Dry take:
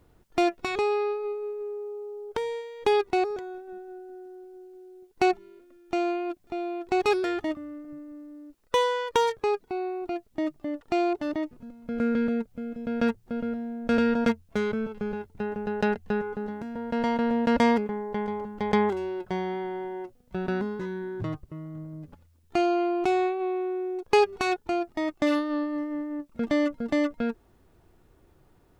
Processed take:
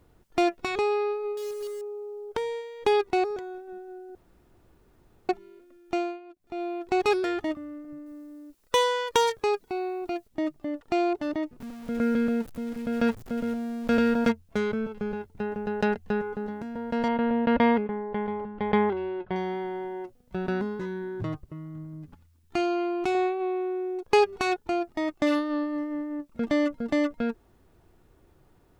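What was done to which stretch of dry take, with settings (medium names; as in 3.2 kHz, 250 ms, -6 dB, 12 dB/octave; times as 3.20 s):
1.37–1.82 s: block-companded coder 3-bit
4.15–5.29 s: room tone
5.95–6.62 s: dip -16 dB, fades 0.25 s
8.06–10.28 s: treble shelf 3.3 kHz +7.5 dB
11.60–14.29 s: jump at every zero crossing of -39.5 dBFS
17.08–19.36 s: low-pass 3.4 kHz 24 dB/octave
21.53–23.15 s: peaking EQ 550 Hz -9.5 dB 0.63 oct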